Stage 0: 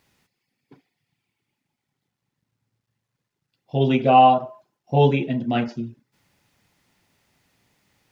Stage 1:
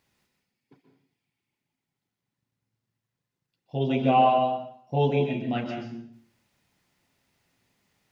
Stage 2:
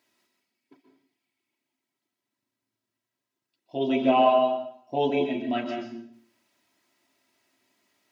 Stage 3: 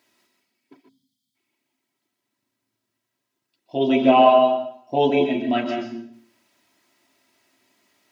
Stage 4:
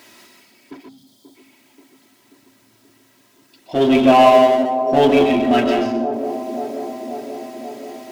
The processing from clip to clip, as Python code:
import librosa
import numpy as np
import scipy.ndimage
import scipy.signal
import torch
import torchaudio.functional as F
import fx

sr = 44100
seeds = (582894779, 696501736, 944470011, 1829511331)

y1 = fx.rev_plate(x, sr, seeds[0], rt60_s=0.6, hf_ratio=1.0, predelay_ms=115, drr_db=3.5)
y1 = F.gain(torch.from_numpy(y1), -7.0).numpy()
y2 = scipy.signal.sosfilt(scipy.signal.butter(2, 210.0, 'highpass', fs=sr, output='sos'), y1)
y2 = y2 + 0.68 * np.pad(y2, (int(3.1 * sr / 1000.0), 0))[:len(y2)]
y3 = fx.spec_box(y2, sr, start_s=0.89, length_s=0.46, low_hz=260.0, high_hz=3000.0, gain_db=-26)
y3 = F.gain(torch.from_numpy(y3), 6.0).numpy()
y4 = fx.power_curve(y3, sr, exponent=0.7)
y4 = fx.echo_wet_bandpass(y4, sr, ms=534, feedback_pct=69, hz=420.0, wet_db=-9)
y4 = F.gain(torch.from_numpy(y4), 1.0).numpy()